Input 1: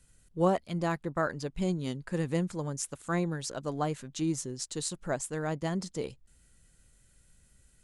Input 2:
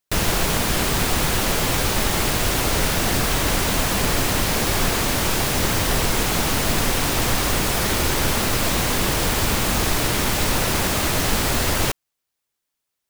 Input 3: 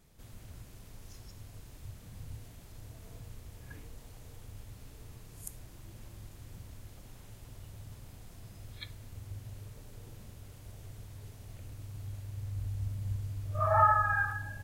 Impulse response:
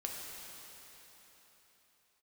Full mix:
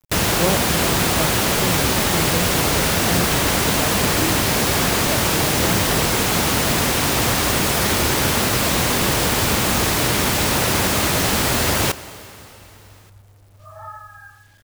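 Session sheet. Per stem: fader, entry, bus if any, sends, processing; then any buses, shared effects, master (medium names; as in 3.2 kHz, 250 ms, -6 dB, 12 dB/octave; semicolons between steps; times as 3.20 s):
+1.0 dB, 0.00 s, send -5 dB, median filter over 25 samples
+1.5 dB, 0.00 s, send -12.5 dB, high-pass 67 Hz
-12.5 dB, 0.05 s, no send, none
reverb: on, pre-delay 3 ms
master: bit crusher 9-bit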